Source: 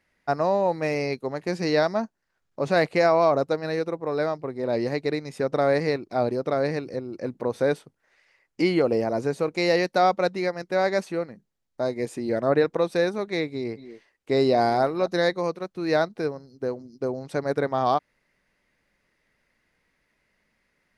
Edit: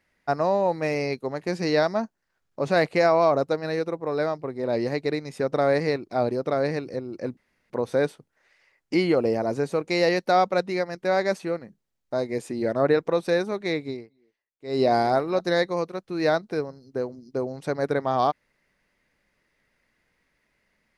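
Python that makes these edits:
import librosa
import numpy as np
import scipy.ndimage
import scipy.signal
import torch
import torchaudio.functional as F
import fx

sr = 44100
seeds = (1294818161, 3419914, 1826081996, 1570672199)

y = fx.edit(x, sr, fx.insert_room_tone(at_s=7.37, length_s=0.33),
    fx.fade_down_up(start_s=13.57, length_s=0.91, db=-22.5, fade_s=0.22, curve='qua'), tone=tone)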